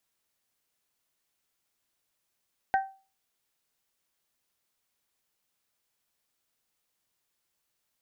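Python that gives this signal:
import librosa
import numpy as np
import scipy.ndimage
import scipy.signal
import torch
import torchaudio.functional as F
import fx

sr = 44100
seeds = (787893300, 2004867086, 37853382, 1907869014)

y = fx.strike_glass(sr, length_s=0.89, level_db=-19.0, body='bell', hz=775.0, decay_s=0.35, tilt_db=7.0, modes=3)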